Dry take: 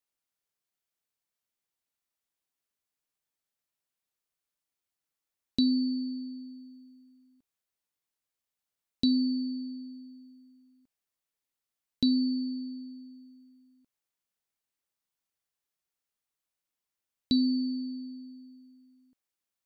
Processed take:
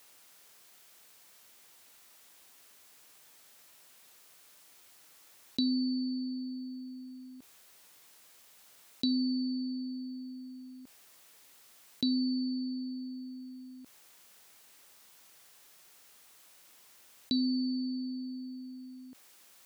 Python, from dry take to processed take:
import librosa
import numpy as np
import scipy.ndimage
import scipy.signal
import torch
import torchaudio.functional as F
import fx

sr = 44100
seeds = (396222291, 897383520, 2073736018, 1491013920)

y = scipy.signal.sosfilt(scipy.signal.butter(2, 48.0, 'highpass', fs=sr, output='sos'), x)
y = fx.low_shelf(y, sr, hz=200.0, db=-9.0)
y = fx.env_flatten(y, sr, amount_pct=50)
y = y * librosa.db_to_amplitude(-2.5)